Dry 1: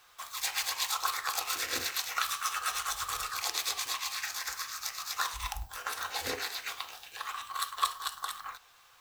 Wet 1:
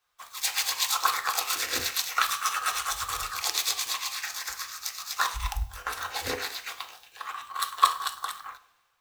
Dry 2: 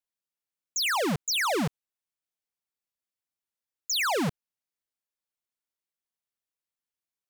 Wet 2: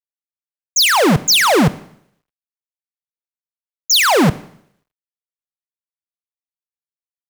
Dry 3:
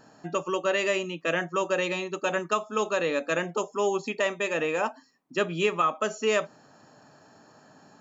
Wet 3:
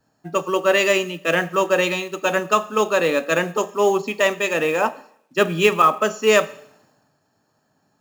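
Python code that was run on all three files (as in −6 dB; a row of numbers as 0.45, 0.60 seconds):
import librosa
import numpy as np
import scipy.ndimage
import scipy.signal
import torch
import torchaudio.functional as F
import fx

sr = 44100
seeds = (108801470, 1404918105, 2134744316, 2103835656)

y = fx.rev_schroeder(x, sr, rt60_s=1.0, comb_ms=30, drr_db=16.0)
y = fx.quant_companded(y, sr, bits=6)
y = fx.band_widen(y, sr, depth_pct=70)
y = librosa.util.normalize(y) * 10.0 ** (-3 / 20.0)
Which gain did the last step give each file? +4.0, +13.0, +8.0 decibels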